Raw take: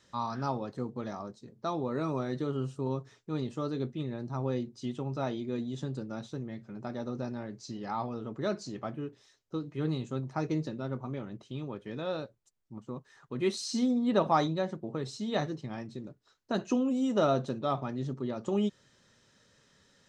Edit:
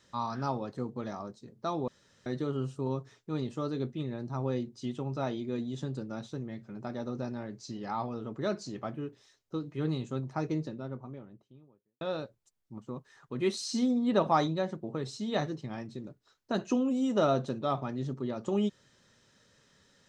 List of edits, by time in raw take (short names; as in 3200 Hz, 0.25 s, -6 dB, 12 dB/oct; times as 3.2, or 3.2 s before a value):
1.88–2.26 room tone
10.16–12.01 studio fade out